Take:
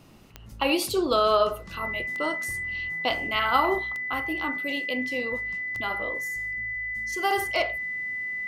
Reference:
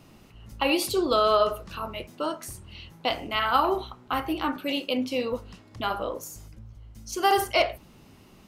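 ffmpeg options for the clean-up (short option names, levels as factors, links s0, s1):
-af "adeclick=t=4,bandreject=f=2000:w=30,asetnsamples=n=441:p=0,asendcmd='3.79 volume volume 4dB',volume=1"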